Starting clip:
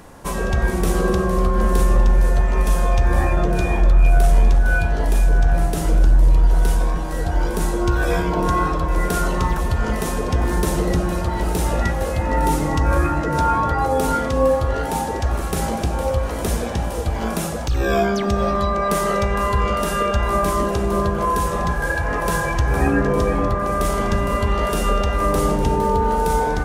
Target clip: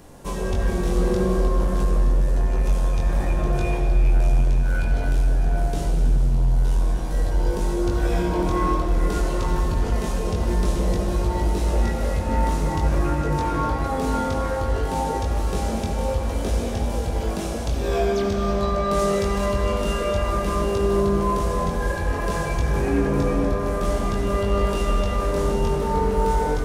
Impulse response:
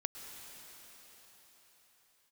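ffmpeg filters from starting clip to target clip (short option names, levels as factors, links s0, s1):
-filter_complex "[0:a]asettb=1/sr,asplit=3[s0][s1][s2];[s0]atrim=end=18.994[s3];[s1]atrim=start=18.99:end=19.46,asetpts=PTS-STARTPTS,afade=t=in:d=0.004:c=qsin,afade=t=out:st=0.466:d=0.004:c=qsin,aemphasis=mode=production:type=cd[s4];[s2]atrim=start=19.456[s5];[s3][s4]acrossfade=d=0.004:c1=hsin:c2=qsin[s6];[s6][s5]acrossfade=d=0.004:c1=qsin:c2=hsin,acrossover=split=7100[s7][s8];[s8]acompressor=threshold=0.00631:ratio=4:attack=1:release=60[s9];[s7][s9]amix=inputs=2:normalize=0,equalizer=f=1400:w=0.88:g=-7,asoftclip=type=tanh:threshold=0.168,flanger=delay=20:depth=2.3:speed=0.53[s10];[1:a]atrim=start_sample=2205,asetrate=70560,aresample=44100[s11];[s10][s11]afir=irnorm=-1:irlink=0,volume=2.37"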